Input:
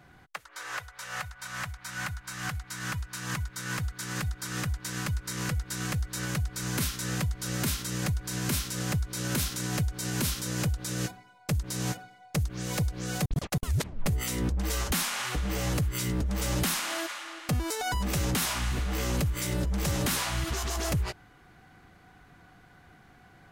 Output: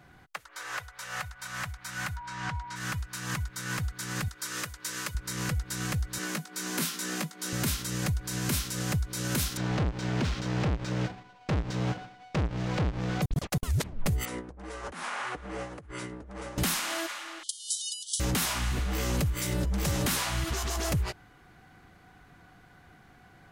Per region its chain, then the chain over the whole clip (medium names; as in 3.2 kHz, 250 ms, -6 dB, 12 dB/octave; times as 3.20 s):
2.16–2.75 s: whistle 960 Hz -39 dBFS + distance through air 99 m
4.28–5.15 s: tone controls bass -15 dB, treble +2 dB + band-stop 770 Hz, Q 5.4
6.18–7.53 s: steep high-pass 160 Hz 72 dB/octave + doubling 19 ms -8.5 dB
9.57–13.22 s: square wave that keeps the level + compression 1.5:1, threshold -31 dBFS + distance through air 140 m
14.25–16.58 s: brick-wall FIR low-pass 11 kHz + compressor with a negative ratio -31 dBFS, ratio -0.5 + three-band isolator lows -13 dB, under 280 Hz, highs -15 dB, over 2 kHz
17.43–18.20 s: brick-wall FIR band-pass 2.9–11 kHz + treble shelf 6.6 kHz +10.5 dB
whole clip: none